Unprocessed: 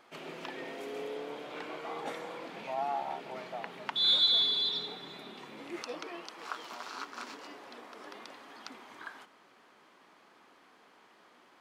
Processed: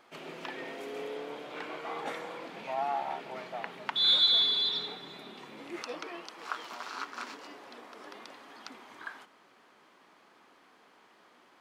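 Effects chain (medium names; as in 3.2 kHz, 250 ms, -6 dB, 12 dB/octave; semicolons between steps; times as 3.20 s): dynamic bell 1.7 kHz, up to +4 dB, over -45 dBFS, Q 0.72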